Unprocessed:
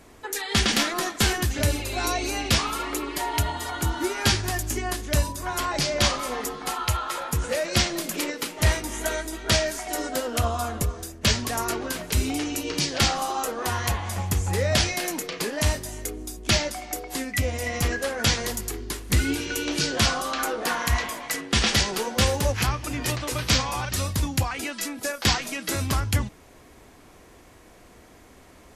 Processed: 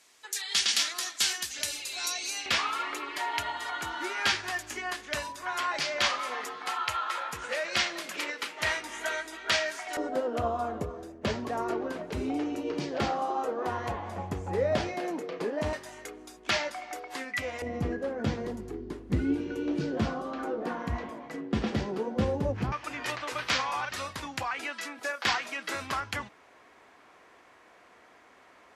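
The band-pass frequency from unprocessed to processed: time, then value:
band-pass, Q 0.78
5400 Hz
from 2.46 s 1800 Hz
from 9.97 s 480 Hz
from 15.73 s 1300 Hz
from 17.62 s 270 Hz
from 22.72 s 1400 Hz

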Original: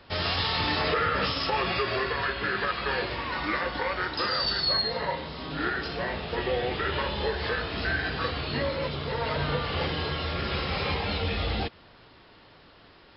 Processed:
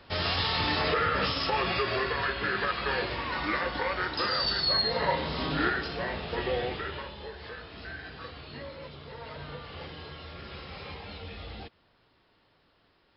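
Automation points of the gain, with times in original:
4.69 s -1 dB
5.42 s +6 dB
5.88 s -2 dB
6.61 s -2 dB
7.17 s -13 dB

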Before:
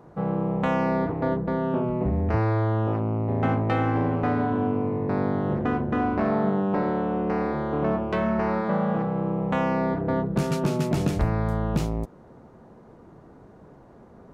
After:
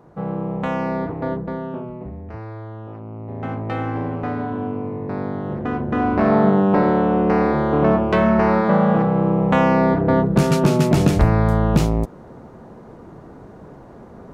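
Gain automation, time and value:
1.39 s +0.5 dB
2.23 s -10.5 dB
2.88 s -10.5 dB
3.77 s -1 dB
5.53 s -1 dB
6.35 s +8.5 dB

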